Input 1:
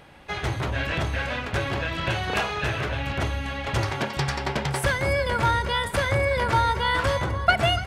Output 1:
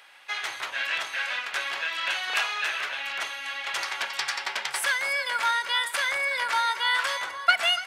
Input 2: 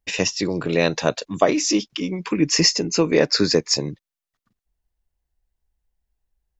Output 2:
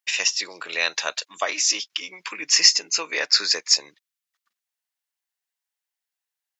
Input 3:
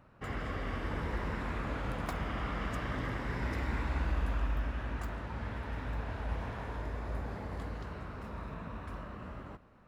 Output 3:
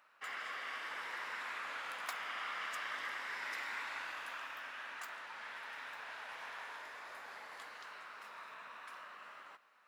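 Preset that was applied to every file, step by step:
high-pass filter 1,400 Hz 12 dB per octave
level +3 dB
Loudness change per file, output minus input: −1.5, 0.0, −5.5 LU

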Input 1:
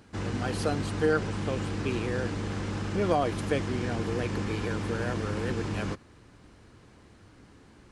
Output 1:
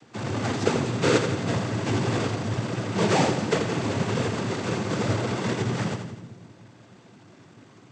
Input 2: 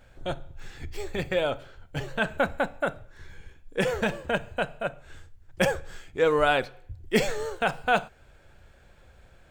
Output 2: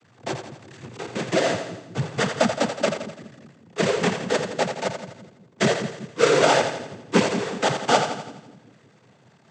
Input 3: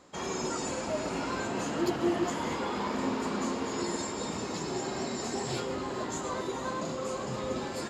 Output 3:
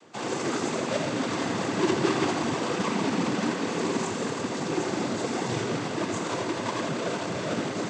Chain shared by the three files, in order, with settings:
each half-wave held at its own peak
cochlear-implant simulation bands 16
echo with a time of its own for lows and highs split 330 Hz, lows 188 ms, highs 84 ms, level −7.5 dB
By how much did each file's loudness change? +4.5, +4.5, +4.5 LU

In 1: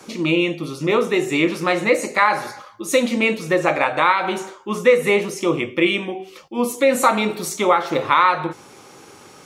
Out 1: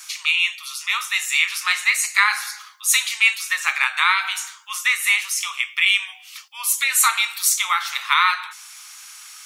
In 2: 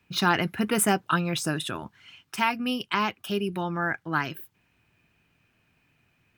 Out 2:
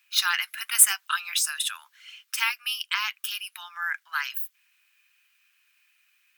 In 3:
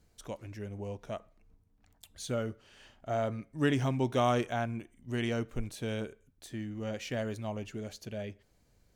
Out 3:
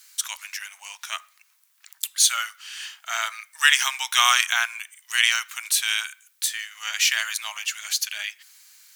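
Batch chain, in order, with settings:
Bessel high-pass filter 2,000 Hz, order 8
high-shelf EQ 7,400 Hz +8 dB
normalise the peak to −1.5 dBFS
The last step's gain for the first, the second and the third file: +6.5, +5.0, +23.0 decibels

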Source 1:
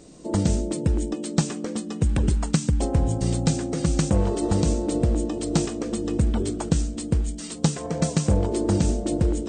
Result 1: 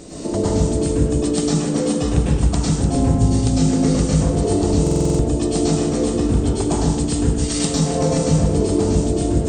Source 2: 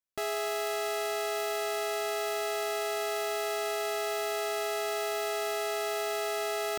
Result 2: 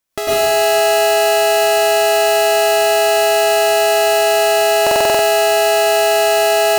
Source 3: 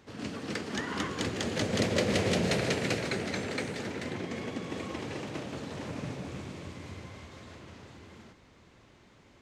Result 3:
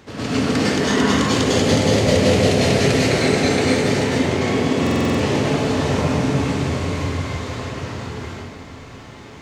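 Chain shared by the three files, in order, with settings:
dynamic equaliser 1,500 Hz, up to −4 dB, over −45 dBFS, Q 1.1
downward compressor 5 to 1, threshold −33 dBFS
on a send: delay that swaps between a low-pass and a high-pass 150 ms, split 1,400 Hz, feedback 56%, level −7 dB
on the sum: dense smooth reverb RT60 0.79 s, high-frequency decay 0.75×, pre-delay 90 ms, DRR −7 dB
buffer that repeats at 0:04.82, samples 2,048, times 7
normalise the peak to −3 dBFS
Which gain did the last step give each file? +9.5, +14.5, +11.5 decibels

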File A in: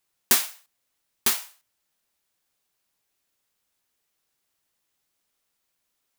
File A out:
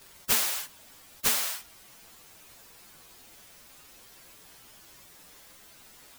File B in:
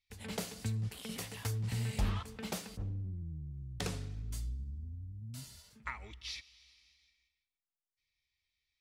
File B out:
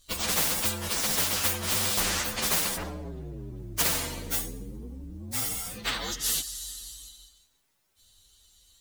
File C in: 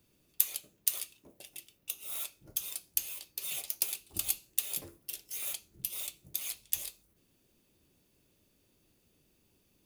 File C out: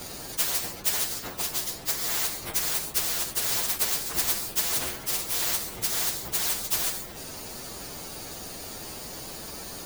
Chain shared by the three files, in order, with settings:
partials spread apart or drawn together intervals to 124%
every bin compressed towards the loudest bin 4 to 1
loudness normalisation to −27 LKFS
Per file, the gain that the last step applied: +7.0, +15.5, +15.0 decibels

